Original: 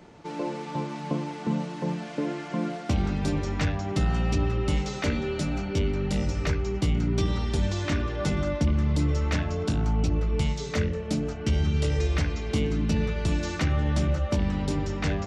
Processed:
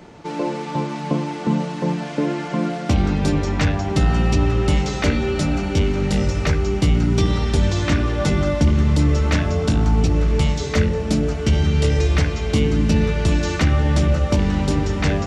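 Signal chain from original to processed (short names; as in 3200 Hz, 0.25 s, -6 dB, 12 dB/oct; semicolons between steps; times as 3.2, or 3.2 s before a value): diffused feedback echo 1.035 s, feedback 62%, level -13 dB; gain +7.5 dB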